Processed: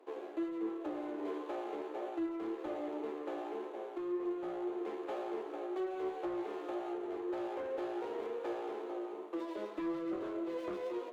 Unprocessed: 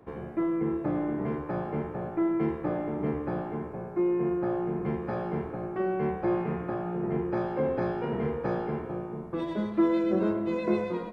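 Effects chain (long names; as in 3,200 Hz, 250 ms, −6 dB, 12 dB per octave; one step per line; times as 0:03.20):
running median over 25 samples
Butterworth high-pass 300 Hz 48 dB per octave
harmonic generator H 5 −11 dB, 6 −37 dB, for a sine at −14.5 dBFS
downward compressor, threshold −26 dBFS, peak gain reduction 6.5 dB
flanger 1.9 Hz, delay 7.6 ms, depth 3.2 ms, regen +50%
level −6 dB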